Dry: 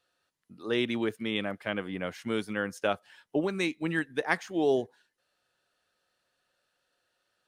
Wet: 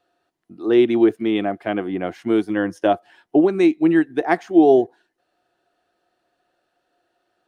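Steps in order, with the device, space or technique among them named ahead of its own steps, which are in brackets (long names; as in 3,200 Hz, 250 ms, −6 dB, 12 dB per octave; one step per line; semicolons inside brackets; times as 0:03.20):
inside a helmet (high-shelf EQ 3,400 Hz −8 dB; hollow resonant body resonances 340/700 Hz, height 14 dB, ringing for 35 ms)
0:02.49–0:02.93: EQ curve with evenly spaced ripples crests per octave 1.2, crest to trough 7 dB
level +4.5 dB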